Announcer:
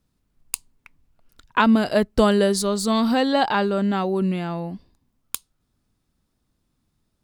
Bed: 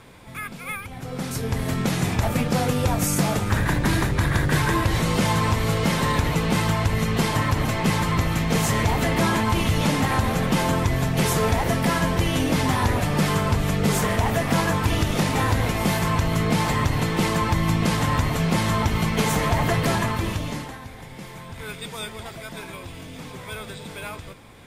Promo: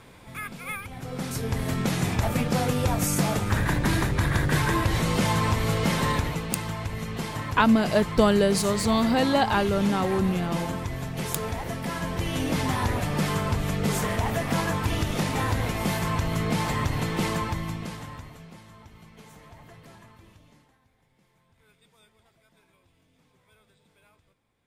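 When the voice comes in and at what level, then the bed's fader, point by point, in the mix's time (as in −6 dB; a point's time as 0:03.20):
6.00 s, −2.5 dB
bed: 0:06.11 −2.5 dB
0:06.49 −10 dB
0:11.85 −10 dB
0:12.49 −4.5 dB
0:17.33 −4.5 dB
0:18.66 −27.5 dB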